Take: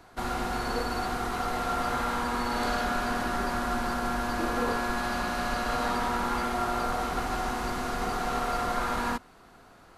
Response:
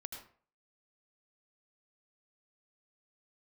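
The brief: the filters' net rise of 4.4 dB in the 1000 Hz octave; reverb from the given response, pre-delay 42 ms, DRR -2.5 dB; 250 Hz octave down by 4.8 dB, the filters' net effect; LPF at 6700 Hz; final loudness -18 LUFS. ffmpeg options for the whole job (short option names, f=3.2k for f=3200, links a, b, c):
-filter_complex "[0:a]lowpass=6.7k,equalizer=f=250:t=o:g=-6,equalizer=f=1k:t=o:g=6.5,asplit=2[a][b];[1:a]atrim=start_sample=2205,adelay=42[c];[b][c]afir=irnorm=-1:irlink=0,volume=5.5dB[d];[a][d]amix=inputs=2:normalize=0,volume=5dB"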